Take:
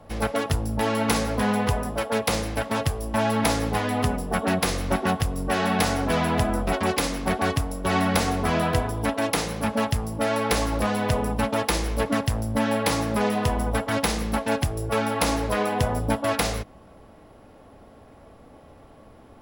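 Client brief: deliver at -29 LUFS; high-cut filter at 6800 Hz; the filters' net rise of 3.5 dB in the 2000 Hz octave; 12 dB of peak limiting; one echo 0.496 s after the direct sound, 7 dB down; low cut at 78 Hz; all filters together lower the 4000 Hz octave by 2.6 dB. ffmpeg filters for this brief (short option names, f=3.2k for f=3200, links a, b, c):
-af "highpass=78,lowpass=6.8k,equalizer=f=2k:t=o:g=5.5,equalizer=f=4k:t=o:g=-5,alimiter=limit=-19dB:level=0:latency=1,aecho=1:1:496:0.447,volume=-1dB"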